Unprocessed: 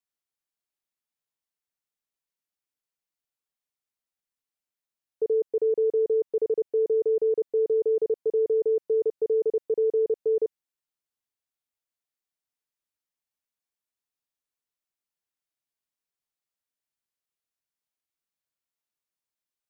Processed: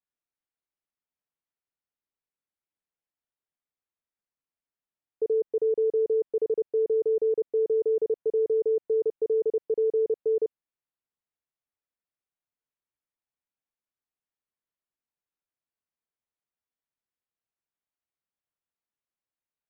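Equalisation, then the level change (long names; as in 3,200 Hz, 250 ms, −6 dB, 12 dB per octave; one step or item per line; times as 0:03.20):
high-frequency loss of the air 420 metres
0.0 dB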